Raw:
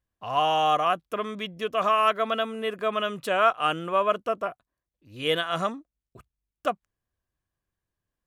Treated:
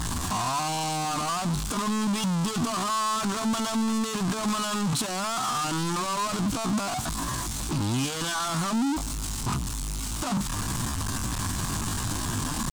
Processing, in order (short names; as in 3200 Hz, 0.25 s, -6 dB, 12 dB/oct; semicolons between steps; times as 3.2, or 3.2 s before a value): infinite clipping; high shelf 11000 Hz -9.5 dB; tempo 0.65×; ten-band EQ 125 Hz +5 dB, 250 Hz +9 dB, 500 Hz -10 dB, 1000 Hz +9 dB, 2000 Hz -5 dB, 4000 Hz +3 dB, 8000 Hz +11 dB; gain -3 dB